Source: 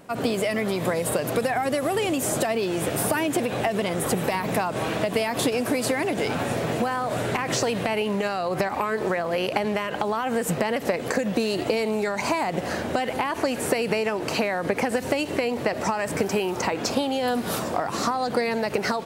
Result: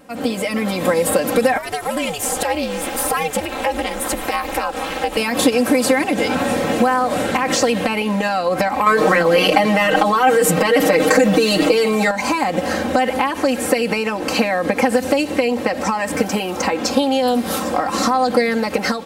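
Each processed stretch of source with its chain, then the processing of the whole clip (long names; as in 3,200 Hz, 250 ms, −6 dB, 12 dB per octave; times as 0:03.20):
0:01.57–0:05.17: high-pass filter 540 Hz 6 dB per octave + ring modulation 150 Hz
0:08.86–0:12.11: mains-hum notches 60/120/180/240/300/360/420 Hz + comb filter 6.4 ms, depth 95% + envelope flattener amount 70%
whole clip: comb filter 3.8 ms, depth 86%; automatic gain control gain up to 6.5 dB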